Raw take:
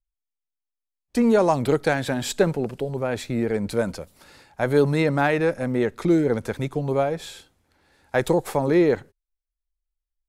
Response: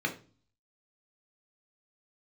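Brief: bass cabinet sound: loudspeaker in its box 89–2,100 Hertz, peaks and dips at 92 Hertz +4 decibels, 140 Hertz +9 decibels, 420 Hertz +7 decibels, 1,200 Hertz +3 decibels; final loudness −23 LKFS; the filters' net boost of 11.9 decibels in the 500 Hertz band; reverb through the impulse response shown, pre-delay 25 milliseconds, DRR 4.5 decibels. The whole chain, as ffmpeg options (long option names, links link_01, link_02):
-filter_complex "[0:a]equalizer=frequency=500:width_type=o:gain=9,asplit=2[link_01][link_02];[1:a]atrim=start_sample=2205,adelay=25[link_03];[link_02][link_03]afir=irnorm=-1:irlink=0,volume=-11.5dB[link_04];[link_01][link_04]amix=inputs=2:normalize=0,highpass=frequency=89:width=0.5412,highpass=frequency=89:width=1.3066,equalizer=frequency=92:width_type=q:width=4:gain=4,equalizer=frequency=140:width_type=q:width=4:gain=9,equalizer=frequency=420:width_type=q:width=4:gain=7,equalizer=frequency=1200:width_type=q:width=4:gain=3,lowpass=frequency=2100:width=0.5412,lowpass=frequency=2100:width=1.3066,volume=-11.5dB"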